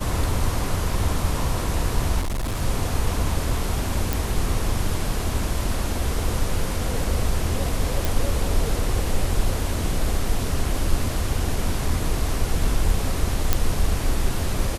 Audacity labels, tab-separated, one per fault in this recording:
2.200000	2.620000	clipping −22 dBFS
4.130000	4.130000	click
8.050000	8.050000	click
13.530000	13.530000	click −3 dBFS

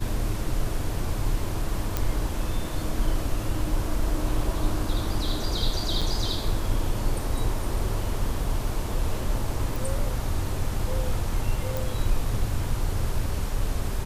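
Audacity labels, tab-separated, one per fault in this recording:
1.970000	1.970000	click −10 dBFS
6.010000	6.020000	drop-out 5.8 ms
9.760000	9.760000	click
11.770000	11.770000	click

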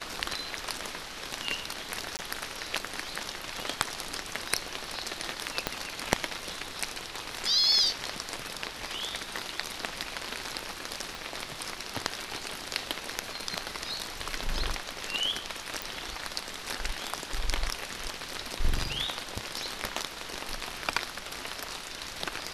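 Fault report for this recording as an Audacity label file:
2.170000	2.190000	drop-out 19 ms
5.670000	5.670000	click −10 dBFS
11.150000	11.150000	click
15.820000	15.820000	click

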